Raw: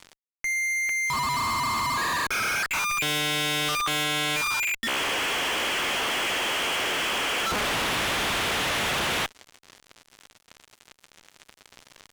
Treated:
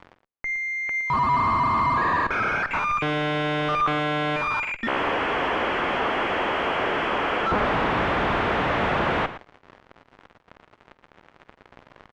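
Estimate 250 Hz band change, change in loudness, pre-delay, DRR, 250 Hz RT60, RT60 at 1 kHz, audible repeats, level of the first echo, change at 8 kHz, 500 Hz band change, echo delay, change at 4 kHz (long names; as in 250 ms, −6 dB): +7.0 dB, +1.0 dB, no reverb audible, no reverb audible, no reverb audible, no reverb audible, 2, −17.5 dB, below −20 dB, +7.0 dB, 50 ms, −8.0 dB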